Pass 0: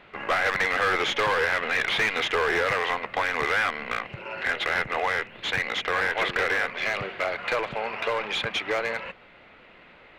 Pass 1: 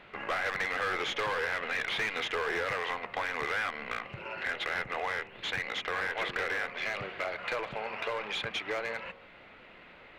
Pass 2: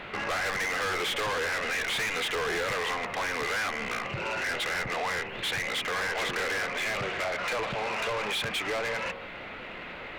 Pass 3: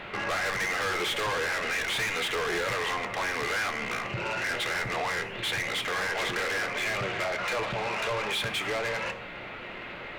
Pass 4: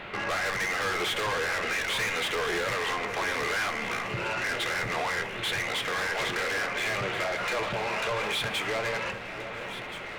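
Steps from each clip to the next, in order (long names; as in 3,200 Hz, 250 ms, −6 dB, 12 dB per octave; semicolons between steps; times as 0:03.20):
hum removal 78.15 Hz, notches 16; downward compressor 1.5 to 1, threshold −39 dBFS, peak gain reduction 6.5 dB; level −1.5 dB
in parallel at −2.5 dB: brickwall limiter −32 dBFS, peak gain reduction 9 dB; on the sum: soft clipping −35.5 dBFS, distortion −7 dB; level +8 dB
convolution reverb RT60 0.55 s, pre-delay 4 ms, DRR 9.5 dB
delay that swaps between a low-pass and a high-pass 689 ms, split 1,700 Hz, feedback 71%, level −10 dB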